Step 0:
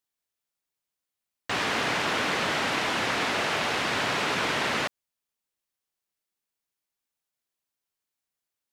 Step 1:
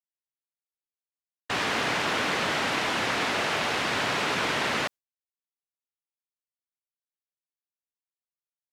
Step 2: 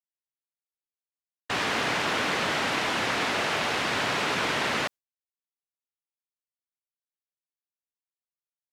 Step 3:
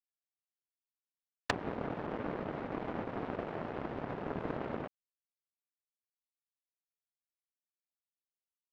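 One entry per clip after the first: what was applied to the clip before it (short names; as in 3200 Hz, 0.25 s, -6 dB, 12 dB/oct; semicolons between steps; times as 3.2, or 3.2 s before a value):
gate with hold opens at -19 dBFS
nothing audible
limiter -19.5 dBFS, peak gain reduction 5.5 dB; treble ducked by the level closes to 550 Hz, closed at -31 dBFS; power-law curve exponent 2; gain +9 dB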